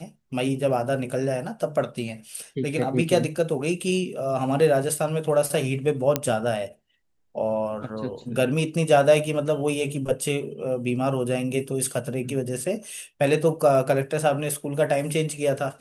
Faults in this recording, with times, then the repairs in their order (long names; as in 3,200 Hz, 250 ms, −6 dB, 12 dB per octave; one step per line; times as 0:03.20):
0:06.16: click −5 dBFS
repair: click removal